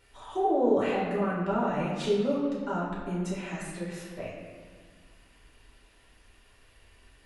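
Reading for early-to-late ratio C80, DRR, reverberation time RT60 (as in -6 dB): 3.0 dB, -7.0 dB, 1.7 s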